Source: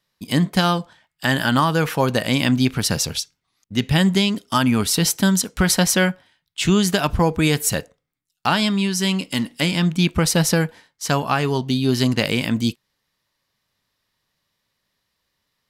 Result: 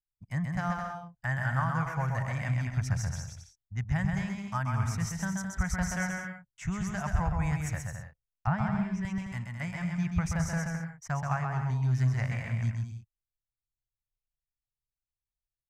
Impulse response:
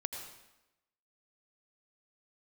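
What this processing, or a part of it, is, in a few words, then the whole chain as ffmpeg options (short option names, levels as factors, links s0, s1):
through cloth: -filter_complex "[0:a]asettb=1/sr,asplit=3[s0][s1][s2];[s0]atrim=end=8.474[s3];[s1]atrim=start=8.47:end=9.05,asetpts=PTS-STARTPTS,afade=t=in:d=0.004:c=qsin,afade=t=out:st=0.576:d=0.004:c=qsin,aemphasis=mode=reproduction:type=riaa[s4];[s2]atrim=start=9.046[s5];[s3][s4]acrossfade=d=0.004:c1=hsin:c2=qsin[s6];[s6][s5]acrossfade=d=0.004:c1=qsin:c2=hsin,anlmdn=25.1,firequalizer=gain_entry='entry(110,0);entry(270,-28);entry(450,-26);entry(680,-9);entry(1100,-9);entry(2000,-4);entry(2900,-21);entry(4200,-24);entry(6000,-3);entry(9900,-15)':delay=0.05:min_phase=1,highshelf=f=2500:g=-12,aecho=1:1:130|214.5|269.4|305.1|328.3:0.631|0.398|0.251|0.158|0.1,volume=0.708"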